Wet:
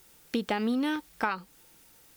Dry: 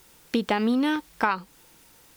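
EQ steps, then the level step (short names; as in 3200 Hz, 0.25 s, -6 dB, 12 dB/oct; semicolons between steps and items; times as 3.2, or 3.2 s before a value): high shelf 9000 Hz +4.5 dB; notch 1000 Hz, Q 11; -5.0 dB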